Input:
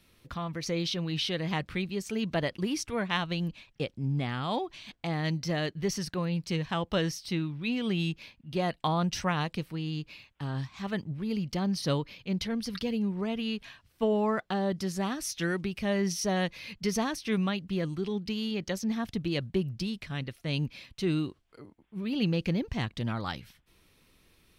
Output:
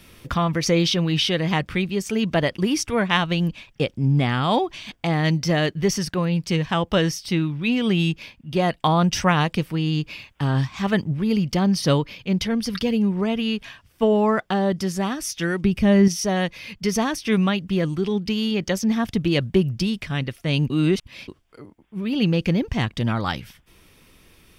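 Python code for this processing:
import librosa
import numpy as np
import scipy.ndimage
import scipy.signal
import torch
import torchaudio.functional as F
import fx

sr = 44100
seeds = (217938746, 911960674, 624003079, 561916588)

y = fx.low_shelf(x, sr, hz=310.0, db=11.5, at=(15.64, 16.08))
y = fx.edit(y, sr, fx.reverse_span(start_s=20.7, length_s=0.58), tone=tone)
y = fx.notch(y, sr, hz=4100.0, q=9.6)
y = fx.rider(y, sr, range_db=10, speed_s=2.0)
y = y * 10.0 ** (8.5 / 20.0)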